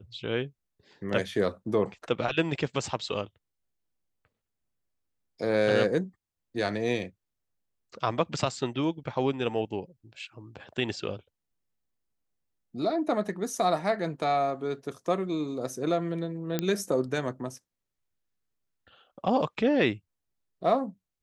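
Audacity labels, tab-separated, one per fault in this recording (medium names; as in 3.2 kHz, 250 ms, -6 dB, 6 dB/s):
16.590000	16.590000	pop -13 dBFS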